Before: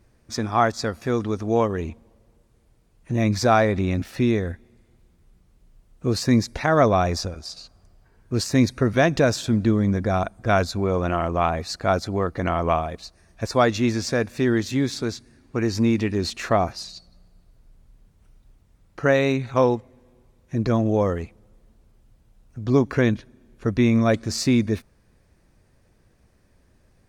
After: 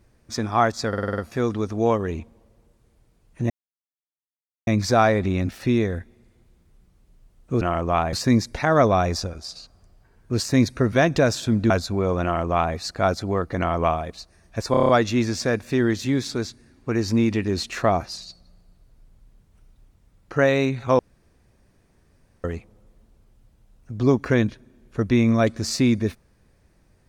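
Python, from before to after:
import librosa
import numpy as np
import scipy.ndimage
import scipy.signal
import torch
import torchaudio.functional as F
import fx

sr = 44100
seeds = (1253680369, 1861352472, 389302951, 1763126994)

y = fx.edit(x, sr, fx.stutter(start_s=0.88, slice_s=0.05, count=7),
    fx.insert_silence(at_s=3.2, length_s=1.17),
    fx.cut(start_s=9.71, length_s=0.84),
    fx.duplicate(start_s=11.08, length_s=0.52, to_s=6.14),
    fx.stutter(start_s=13.56, slice_s=0.03, count=7),
    fx.room_tone_fill(start_s=19.66, length_s=1.45), tone=tone)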